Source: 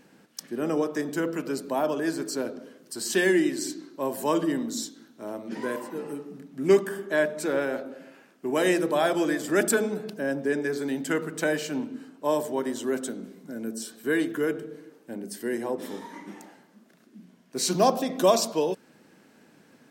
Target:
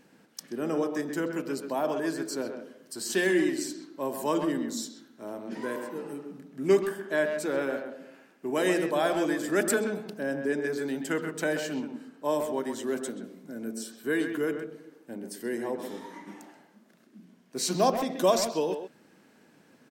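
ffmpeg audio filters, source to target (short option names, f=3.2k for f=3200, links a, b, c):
-filter_complex "[0:a]asplit=2[a][b];[b]adelay=130,highpass=300,lowpass=3.4k,asoftclip=type=hard:threshold=-18dB,volume=-7dB[c];[a][c]amix=inputs=2:normalize=0,volume=-3dB"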